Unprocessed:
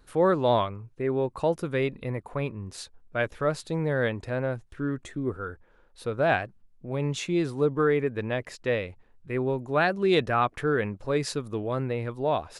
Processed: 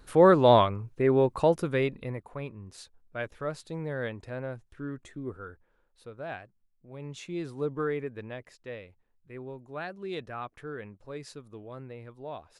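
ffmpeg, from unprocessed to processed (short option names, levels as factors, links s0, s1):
-af "volume=4.22,afade=t=out:st=1.19:d=1.13:silence=0.266073,afade=t=out:st=5.42:d=0.72:silence=0.421697,afade=t=in:st=6.88:d=0.86:silence=0.375837,afade=t=out:st=7.74:d=0.85:silence=0.421697"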